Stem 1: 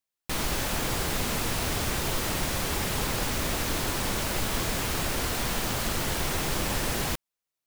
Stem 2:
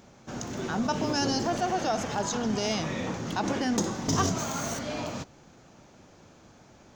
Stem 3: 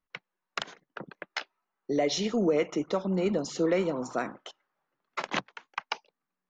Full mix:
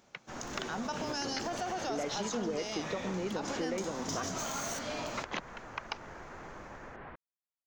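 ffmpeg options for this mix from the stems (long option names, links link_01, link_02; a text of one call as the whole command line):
ffmpeg -i stem1.wav -i stem2.wav -i stem3.wav -filter_complex "[0:a]lowpass=frequency=1800:width=0.5412,lowpass=frequency=1800:width=1.3066,alimiter=limit=-22dB:level=0:latency=1:release=92,volume=-11dB[link_01];[1:a]dynaudnorm=framelen=150:gausssize=5:maxgain=6.5dB,volume=-7.5dB[link_02];[2:a]volume=-4dB[link_03];[link_01][link_02]amix=inputs=2:normalize=0,lowshelf=frequency=330:gain=-10,alimiter=limit=-24dB:level=0:latency=1:release=18,volume=0dB[link_04];[link_03][link_04]amix=inputs=2:normalize=0,acompressor=threshold=-33dB:ratio=3" out.wav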